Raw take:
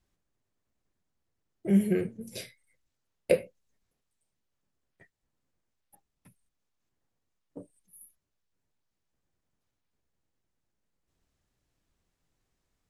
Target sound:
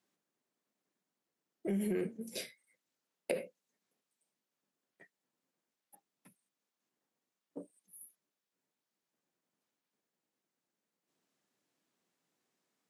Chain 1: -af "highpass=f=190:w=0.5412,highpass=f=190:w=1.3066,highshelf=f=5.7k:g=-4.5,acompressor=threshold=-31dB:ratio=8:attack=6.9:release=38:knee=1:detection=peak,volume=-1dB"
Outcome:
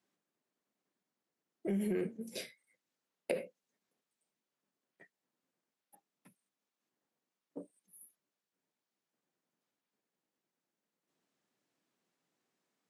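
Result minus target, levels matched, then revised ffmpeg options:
8000 Hz band -3.0 dB
-af "highpass=f=190:w=0.5412,highpass=f=190:w=1.3066,acompressor=threshold=-31dB:ratio=8:attack=6.9:release=38:knee=1:detection=peak,volume=-1dB"

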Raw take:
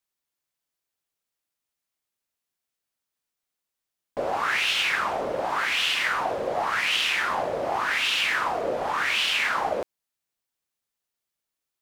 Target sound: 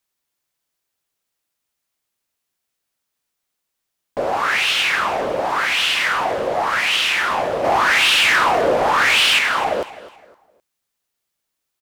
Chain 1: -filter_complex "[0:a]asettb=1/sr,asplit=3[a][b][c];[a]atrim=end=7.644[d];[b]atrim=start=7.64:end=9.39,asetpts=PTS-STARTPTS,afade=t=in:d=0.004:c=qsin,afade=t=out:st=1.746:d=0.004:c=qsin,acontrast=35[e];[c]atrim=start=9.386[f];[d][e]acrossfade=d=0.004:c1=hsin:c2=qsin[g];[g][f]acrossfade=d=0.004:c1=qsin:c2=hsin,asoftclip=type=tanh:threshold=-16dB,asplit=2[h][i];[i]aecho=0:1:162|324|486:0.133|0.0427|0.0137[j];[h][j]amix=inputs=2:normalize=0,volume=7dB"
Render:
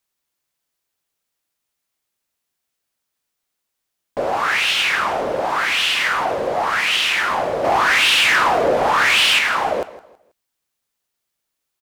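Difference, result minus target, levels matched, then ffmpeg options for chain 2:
echo 95 ms early
-filter_complex "[0:a]asettb=1/sr,asplit=3[a][b][c];[a]atrim=end=7.644[d];[b]atrim=start=7.64:end=9.39,asetpts=PTS-STARTPTS,afade=t=in:d=0.004:c=qsin,afade=t=out:st=1.746:d=0.004:c=qsin,acontrast=35[e];[c]atrim=start=9.386[f];[d][e]acrossfade=d=0.004:c1=hsin:c2=qsin[g];[g][f]acrossfade=d=0.004:c1=qsin:c2=hsin,asoftclip=type=tanh:threshold=-16dB,asplit=2[h][i];[i]aecho=0:1:257|514|771:0.133|0.0427|0.0137[j];[h][j]amix=inputs=2:normalize=0,volume=7dB"

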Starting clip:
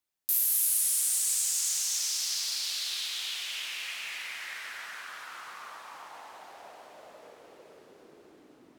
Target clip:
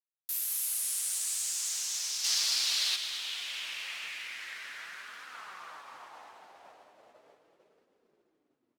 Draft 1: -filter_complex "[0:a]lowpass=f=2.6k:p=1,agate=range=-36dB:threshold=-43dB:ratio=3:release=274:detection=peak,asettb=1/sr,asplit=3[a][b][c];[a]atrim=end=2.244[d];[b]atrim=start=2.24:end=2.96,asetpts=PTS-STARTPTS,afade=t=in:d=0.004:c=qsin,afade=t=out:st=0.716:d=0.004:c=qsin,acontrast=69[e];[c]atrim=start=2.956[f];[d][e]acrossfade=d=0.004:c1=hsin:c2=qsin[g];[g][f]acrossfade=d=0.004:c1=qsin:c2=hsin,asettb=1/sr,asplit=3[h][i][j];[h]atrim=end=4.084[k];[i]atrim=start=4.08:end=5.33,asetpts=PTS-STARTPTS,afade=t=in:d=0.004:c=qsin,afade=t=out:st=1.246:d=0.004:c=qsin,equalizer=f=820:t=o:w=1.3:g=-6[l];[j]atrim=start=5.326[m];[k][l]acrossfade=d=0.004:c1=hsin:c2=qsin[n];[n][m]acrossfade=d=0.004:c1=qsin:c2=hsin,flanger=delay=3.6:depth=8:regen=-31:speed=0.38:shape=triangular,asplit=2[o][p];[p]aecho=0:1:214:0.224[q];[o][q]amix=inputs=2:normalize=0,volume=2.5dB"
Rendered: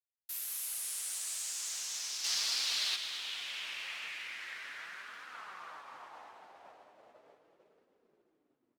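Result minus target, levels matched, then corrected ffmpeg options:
2000 Hz band +3.5 dB
-filter_complex "[0:a]lowpass=f=6.2k:p=1,agate=range=-36dB:threshold=-43dB:ratio=3:release=274:detection=peak,asettb=1/sr,asplit=3[a][b][c];[a]atrim=end=2.244[d];[b]atrim=start=2.24:end=2.96,asetpts=PTS-STARTPTS,afade=t=in:d=0.004:c=qsin,afade=t=out:st=0.716:d=0.004:c=qsin,acontrast=69[e];[c]atrim=start=2.956[f];[d][e]acrossfade=d=0.004:c1=hsin:c2=qsin[g];[g][f]acrossfade=d=0.004:c1=qsin:c2=hsin,asettb=1/sr,asplit=3[h][i][j];[h]atrim=end=4.084[k];[i]atrim=start=4.08:end=5.33,asetpts=PTS-STARTPTS,afade=t=in:d=0.004:c=qsin,afade=t=out:st=1.246:d=0.004:c=qsin,equalizer=f=820:t=o:w=1.3:g=-6[l];[j]atrim=start=5.326[m];[k][l]acrossfade=d=0.004:c1=hsin:c2=qsin[n];[n][m]acrossfade=d=0.004:c1=qsin:c2=hsin,flanger=delay=3.6:depth=8:regen=-31:speed=0.38:shape=triangular,asplit=2[o][p];[p]aecho=0:1:214:0.224[q];[o][q]amix=inputs=2:normalize=0,volume=2.5dB"

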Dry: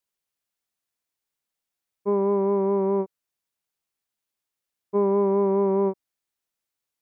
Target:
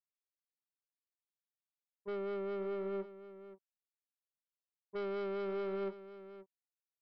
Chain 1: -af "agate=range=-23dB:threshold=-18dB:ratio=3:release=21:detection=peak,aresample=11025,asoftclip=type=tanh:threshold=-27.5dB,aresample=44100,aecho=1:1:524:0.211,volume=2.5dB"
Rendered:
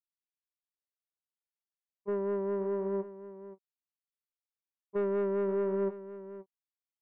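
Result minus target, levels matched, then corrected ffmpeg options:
soft clip: distortion -7 dB
-af "agate=range=-23dB:threshold=-18dB:ratio=3:release=21:detection=peak,aresample=11025,asoftclip=type=tanh:threshold=-39dB,aresample=44100,aecho=1:1:524:0.211,volume=2.5dB"

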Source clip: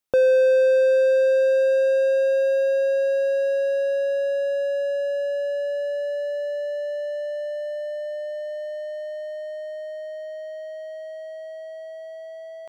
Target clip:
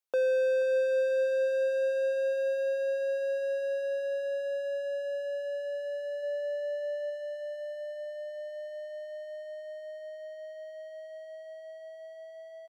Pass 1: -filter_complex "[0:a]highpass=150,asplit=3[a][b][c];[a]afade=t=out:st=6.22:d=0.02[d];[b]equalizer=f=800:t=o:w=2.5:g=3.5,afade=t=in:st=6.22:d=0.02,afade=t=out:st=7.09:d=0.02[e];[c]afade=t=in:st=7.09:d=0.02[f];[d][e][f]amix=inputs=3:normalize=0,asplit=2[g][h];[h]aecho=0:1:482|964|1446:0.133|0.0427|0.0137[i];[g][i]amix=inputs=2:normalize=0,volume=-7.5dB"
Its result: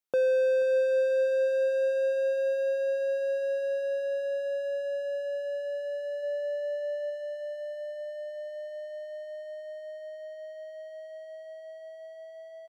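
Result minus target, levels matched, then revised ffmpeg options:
125 Hz band +13.0 dB
-filter_complex "[0:a]highpass=460,asplit=3[a][b][c];[a]afade=t=out:st=6.22:d=0.02[d];[b]equalizer=f=800:t=o:w=2.5:g=3.5,afade=t=in:st=6.22:d=0.02,afade=t=out:st=7.09:d=0.02[e];[c]afade=t=in:st=7.09:d=0.02[f];[d][e][f]amix=inputs=3:normalize=0,asplit=2[g][h];[h]aecho=0:1:482|964|1446:0.133|0.0427|0.0137[i];[g][i]amix=inputs=2:normalize=0,volume=-7.5dB"

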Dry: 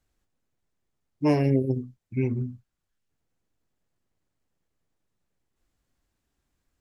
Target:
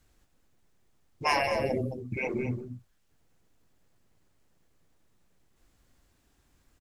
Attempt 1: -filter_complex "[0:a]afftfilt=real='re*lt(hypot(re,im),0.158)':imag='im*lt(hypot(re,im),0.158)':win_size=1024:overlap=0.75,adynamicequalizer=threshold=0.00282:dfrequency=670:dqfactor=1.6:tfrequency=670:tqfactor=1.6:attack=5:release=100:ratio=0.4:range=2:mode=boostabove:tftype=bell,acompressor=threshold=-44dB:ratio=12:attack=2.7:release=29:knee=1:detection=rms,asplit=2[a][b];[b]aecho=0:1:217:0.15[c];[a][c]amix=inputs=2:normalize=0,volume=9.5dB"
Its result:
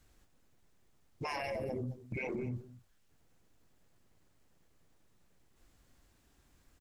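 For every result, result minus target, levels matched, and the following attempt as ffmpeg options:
compressor: peak gain reduction +14.5 dB; echo-to-direct -7 dB
-filter_complex "[0:a]afftfilt=real='re*lt(hypot(re,im),0.158)':imag='im*lt(hypot(re,im),0.158)':win_size=1024:overlap=0.75,adynamicequalizer=threshold=0.00282:dfrequency=670:dqfactor=1.6:tfrequency=670:tqfactor=1.6:attack=5:release=100:ratio=0.4:range=2:mode=boostabove:tftype=bell,asplit=2[a][b];[b]aecho=0:1:217:0.15[c];[a][c]amix=inputs=2:normalize=0,volume=9.5dB"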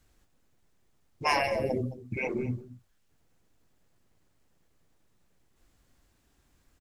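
echo-to-direct -7 dB
-filter_complex "[0:a]afftfilt=real='re*lt(hypot(re,im),0.158)':imag='im*lt(hypot(re,im),0.158)':win_size=1024:overlap=0.75,adynamicequalizer=threshold=0.00282:dfrequency=670:dqfactor=1.6:tfrequency=670:tqfactor=1.6:attack=5:release=100:ratio=0.4:range=2:mode=boostabove:tftype=bell,asplit=2[a][b];[b]aecho=0:1:217:0.335[c];[a][c]amix=inputs=2:normalize=0,volume=9.5dB"

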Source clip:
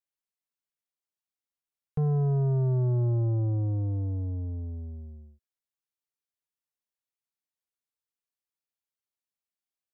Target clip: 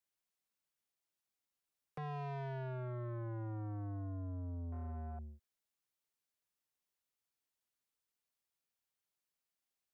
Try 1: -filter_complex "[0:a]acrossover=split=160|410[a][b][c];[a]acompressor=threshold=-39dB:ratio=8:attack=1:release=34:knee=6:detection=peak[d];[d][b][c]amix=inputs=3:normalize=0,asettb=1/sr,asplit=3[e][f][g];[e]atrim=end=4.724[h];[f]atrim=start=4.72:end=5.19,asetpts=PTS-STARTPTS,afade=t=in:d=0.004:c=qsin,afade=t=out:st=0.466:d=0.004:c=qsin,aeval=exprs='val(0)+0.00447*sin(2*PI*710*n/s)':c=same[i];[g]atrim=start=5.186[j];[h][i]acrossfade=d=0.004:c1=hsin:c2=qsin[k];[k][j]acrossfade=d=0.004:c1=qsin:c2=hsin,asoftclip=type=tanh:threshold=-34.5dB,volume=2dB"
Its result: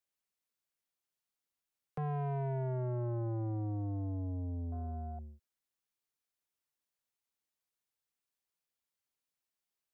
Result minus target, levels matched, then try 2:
soft clip: distortion -4 dB
-filter_complex "[0:a]acrossover=split=160|410[a][b][c];[a]acompressor=threshold=-39dB:ratio=8:attack=1:release=34:knee=6:detection=peak[d];[d][b][c]amix=inputs=3:normalize=0,asettb=1/sr,asplit=3[e][f][g];[e]atrim=end=4.724[h];[f]atrim=start=4.72:end=5.19,asetpts=PTS-STARTPTS,afade=t=in:d=0.004:c=qsin,afade=t=out:st=0.466:d=0.004:c=qsin,aeval=exprs='val(0)+0.00447*sin(2*PI*710*n/s)':c=same[i];[g]atrim=start=5.186[j];[h][i]acrossfade=d=0.004:c1=hsin:c2=qsin[k];[k][j]acrossfade=d=0.004:c1=qsin:c2=hsin,asoftclip=type=tanh:threshold=-42.5dB,volume=2dB"

